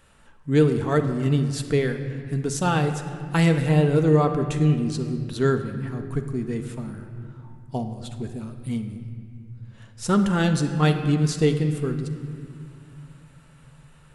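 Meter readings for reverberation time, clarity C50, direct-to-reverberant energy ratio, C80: 2.1 s, 8.5 dB, 5.5 dB, 9.5 dB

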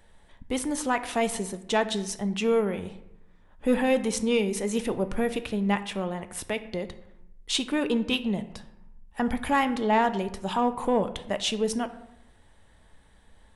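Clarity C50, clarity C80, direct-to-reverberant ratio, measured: 13.5 dB, 16.0 dB, 10.0 dB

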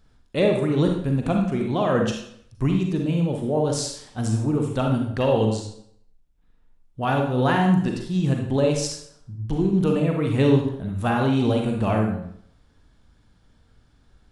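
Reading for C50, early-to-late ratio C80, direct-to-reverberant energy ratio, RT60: 3.5 dB, 7.5 dB, 1.0 dB, 0.65 s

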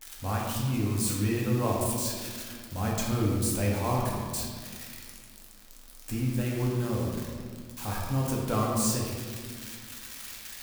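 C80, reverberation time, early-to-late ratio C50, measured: 2.0 dB, 1.9 s, 0.0 dB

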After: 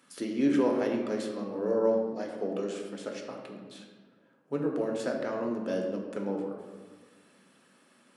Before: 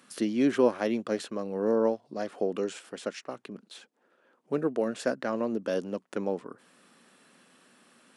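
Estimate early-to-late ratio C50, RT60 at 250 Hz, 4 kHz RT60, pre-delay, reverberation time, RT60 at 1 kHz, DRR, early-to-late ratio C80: 4.0 dB, 1.9 s, 0.85 s, 3 ms, 1.5 s, 1.3 s, 0.5 dB, 5.5 dB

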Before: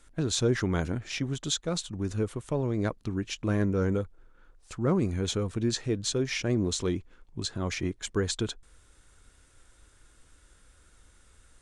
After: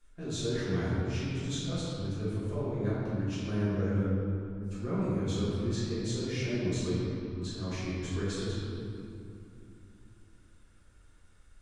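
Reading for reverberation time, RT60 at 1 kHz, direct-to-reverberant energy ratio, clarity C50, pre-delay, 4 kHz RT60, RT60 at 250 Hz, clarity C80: 2.7 s, 2.6 s, −13.5 dB, −3.5 dB, 3 ms, 1.6 s, 3.8 s, −1.5 dB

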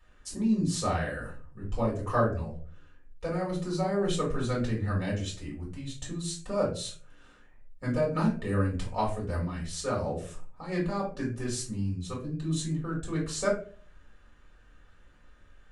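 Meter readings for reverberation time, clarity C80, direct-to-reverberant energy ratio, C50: 0.40 s, 12.5 dB, −5.5 dB, 7.0 dB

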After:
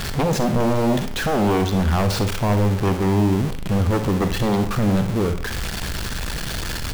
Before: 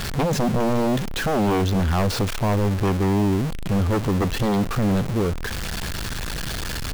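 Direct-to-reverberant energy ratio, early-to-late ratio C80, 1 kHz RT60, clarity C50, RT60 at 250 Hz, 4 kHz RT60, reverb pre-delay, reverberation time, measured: 8.5 dB, 14.0 dB, 0.45 s, 10.0 dB, 0.50 s, 0.35 s, 35 ms, 0.45 s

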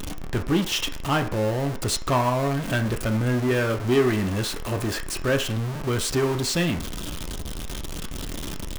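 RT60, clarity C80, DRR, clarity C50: 0.50 s, 16.5 dB, 4.0 dB, 12.0 dB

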